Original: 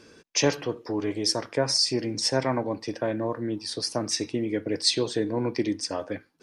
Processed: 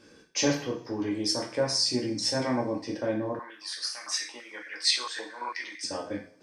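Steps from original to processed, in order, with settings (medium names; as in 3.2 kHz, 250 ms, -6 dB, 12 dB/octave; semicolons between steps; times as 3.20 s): two-slope reverb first 0.42 s, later 1.9 s, from -28 dB, DRR -1.5 dB; 3.39–5.84 s: step-sequenced high-pass 8.9 Hz 950–2000 Hz; trim -6.5 dB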